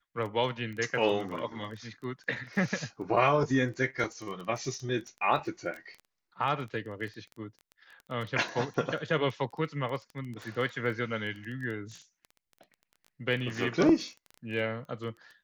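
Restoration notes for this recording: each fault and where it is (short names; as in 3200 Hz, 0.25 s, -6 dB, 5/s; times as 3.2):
crackle 15/s -36 dBFS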